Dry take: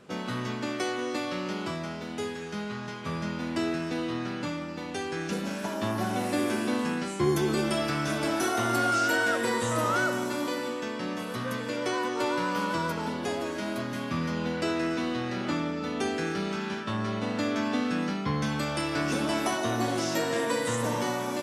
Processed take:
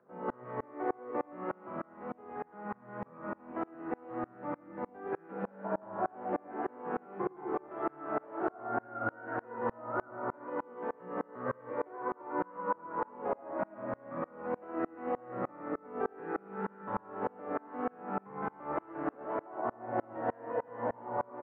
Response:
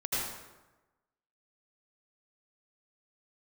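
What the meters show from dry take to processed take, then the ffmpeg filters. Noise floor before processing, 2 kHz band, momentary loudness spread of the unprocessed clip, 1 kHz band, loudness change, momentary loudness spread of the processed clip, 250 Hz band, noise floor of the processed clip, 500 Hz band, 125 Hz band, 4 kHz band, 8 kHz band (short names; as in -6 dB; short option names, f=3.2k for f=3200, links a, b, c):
-37 dBFS, -14.0 dB, 8 LU, -5.0 dB, -9.0 dB, 6 LU, -11.5 dB, -59 dBFS, -6.0 dB, -16.0 dB, under -35 dB, under -40 dB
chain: -filter_complex "[0:a]acrossover=split=150|440[a][b][c];[a]acompressor=threshold=-48dB:ratio=4[d];[b]acompressor=threshold=-36dB:ratio=4[e];[c]acompressor=threshold=-30dB:ratio=4[f];[d][e][f]amix=inputs=3:normalize=0,lowpass=f=1.7k:w=0.5412,lowpass=f=1.7k:w=1.3066,equalizer=f=760:w=0.56:g=11,asplit=2[g][h];[h]adelay=16,volume=-6dB[i];[g][i]amix=inputs=2:normalize=0,asplit=2[j][k];[k]aecho=0:1:112|224|336|448|560|672|784|896:0.562|0.332|0.196|0.115|0.0681|0.0402|0.0237|0.014[l];[j][l]amix=inputs=2:normalize=0,alimiter=limit=-13.5dB:level=0:latency=1:release=204,flanger=delay=5.6:depth=8.1:regen=72:speed=1.9:shape=sinusoidal,acompressor=mode=upward:threshold=-31dB:ratio=2.5,highpass=92,aemphasis=mode=reproduction:type=75kf,aeval=exprs='val(0)*pow(10,-31*if(lt(mod(-3.3*n/s,1),2*abs(-3.3)/1000),1-mod(-3.3*n/s,1)/(2*abs(-3.3)/1000),(mod(-3.3*n/s,1)-2*abs(-3.3)/1000)/(1-2*abs(-3.3)/1000))/20)':c=same"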